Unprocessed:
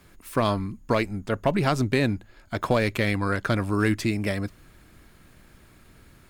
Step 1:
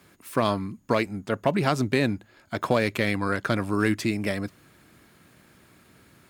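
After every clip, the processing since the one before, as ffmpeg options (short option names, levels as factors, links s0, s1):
-af "highpass=120"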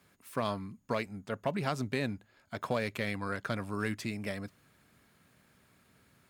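-af "equalizer=f=330:t=o:w=0.26:g=-8.5,volume=0.355"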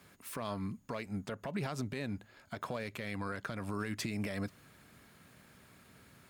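-af "acompressor=threshold=0.0224:ratio=6,alimiter=level_in=2.51:limit=0.0631:level=0:latency=1:release=122,volume=0.398,volume=1.88"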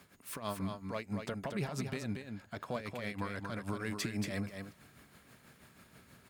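-af "tremolo=f=6.2:d=0.73,aecho=1:1:231:0.501,volume=1.33"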